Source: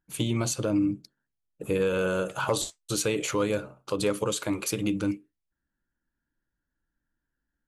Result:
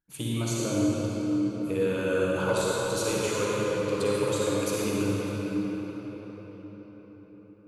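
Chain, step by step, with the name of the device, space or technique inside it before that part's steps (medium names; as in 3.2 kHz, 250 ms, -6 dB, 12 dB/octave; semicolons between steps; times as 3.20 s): cathedral (reverberation RT60 5.5 s, pre-delay 43 ms, DRR -6.5 dB); trim -6.5 dB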